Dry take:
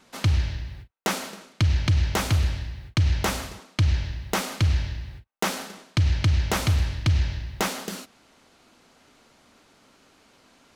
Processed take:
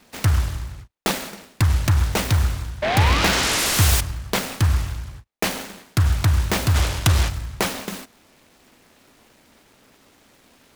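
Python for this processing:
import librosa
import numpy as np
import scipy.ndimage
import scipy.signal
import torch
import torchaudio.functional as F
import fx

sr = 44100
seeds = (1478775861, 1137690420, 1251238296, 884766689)

y = fx.spec_paint(x, sr, seeds[0], shape='rise', start_s=2.82, length_s=1.19, low_hz=590.0, high_hz=6200.0, level_db=-24.0)
y = fx.peak_eq(y, sr, hz=1300.0, db=13.0, octaves=2.6, at=(6.74, 7.28), fade=0.02)
y = fx.noise_mod_delay(y, sr, seeds[1], noise_hz=1200.0, depth_ms=0.19)
y = F.gain(torch.from_numpy(y), 3.0).numpy()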